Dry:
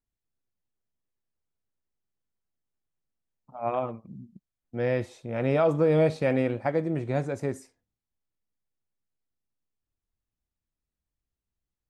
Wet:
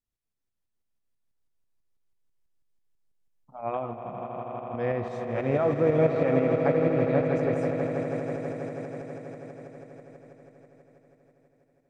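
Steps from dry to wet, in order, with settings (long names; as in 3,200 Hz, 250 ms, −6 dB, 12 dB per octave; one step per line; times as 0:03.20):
treble cut that deepens with the level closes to 2,200 Hz, closed at −21.5 dBFS
echo that builds up and dies away 81 ms, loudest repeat 8, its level −10.5 dB
shaped tremolo saw up 6.1 Hz, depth 45%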